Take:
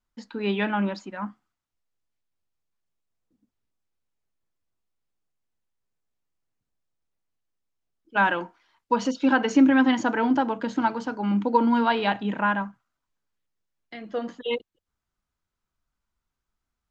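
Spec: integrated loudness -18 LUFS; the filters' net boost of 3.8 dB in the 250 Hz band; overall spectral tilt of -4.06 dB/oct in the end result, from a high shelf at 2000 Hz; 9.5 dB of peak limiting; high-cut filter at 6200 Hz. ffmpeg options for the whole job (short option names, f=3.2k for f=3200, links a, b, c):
-af "lowpass=6.2k,equalizer=f=250:t=o:g=4,highshelf=f=2k:g=6,volume=7.5dB,alimiter=limit=-7dB:level=0:latency=1"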